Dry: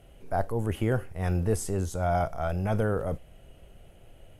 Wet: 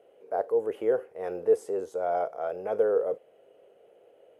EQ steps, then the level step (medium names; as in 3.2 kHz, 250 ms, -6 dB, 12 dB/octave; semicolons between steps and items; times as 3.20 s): resonant high-pass 460 Hz, resonance Q 5.1; treble shelf 3 kHz -11.5 dB; -5.0 dB